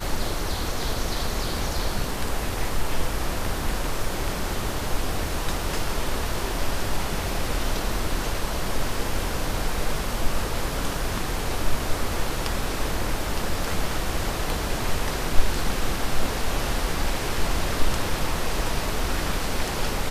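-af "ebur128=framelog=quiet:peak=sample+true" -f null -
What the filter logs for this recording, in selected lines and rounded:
Integrated loudness:
  I:         -28.2 LUFS
  Threshold: -38.2 LUFS
Loudness range:
  LRA:         1.4 LU
  Threshold: -48.2 LUFS
  LRA low:   -28.8 LUFS
  LRA high:  -27.4 LUFS
Sample peak:
  Peak:       -2.5 dBFS
True peak:
  Peak:       -2.5 dBFS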